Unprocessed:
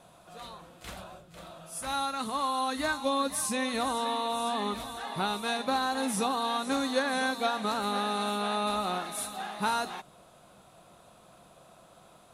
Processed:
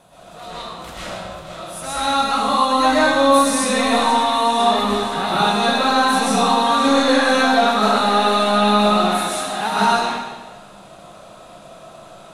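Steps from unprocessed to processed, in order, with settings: in parallel at -9.5 dB: soft clip -28.5 dBFS, distortion -11 dB; on the sum: reverb RT60 1.2 s, pre-delay 85 ms, DRR -10.5 dB; gain +1.5 dB

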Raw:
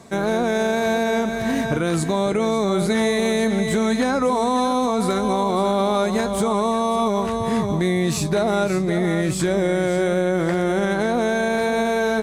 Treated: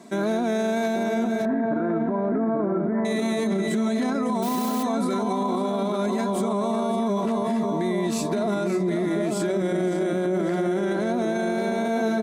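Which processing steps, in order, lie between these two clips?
1.45–3.05 steep low-pass 1800 Hz 48 dB/oct; dark delay 0.834 s, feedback 31%, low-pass 1200 Hz, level -3.5 dB; 4.42–4.83 modulation noise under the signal 10 dB; resonant low shelf 130 Hz -14 dB, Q 3; comb 3 ms, depth 49%; limiter -13 dBFS, peak gain reduction 9.5 dB; gain -4 dB

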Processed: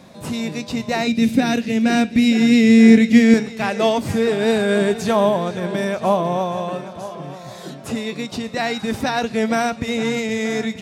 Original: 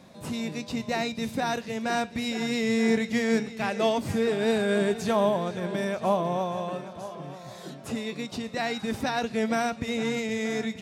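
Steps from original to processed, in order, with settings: 1.07–3.34 fifteen-band EQ 250 Hz +11 dB, 1000 Hz -9 dB, 2500 Hz +5 dB; gain +7 dB

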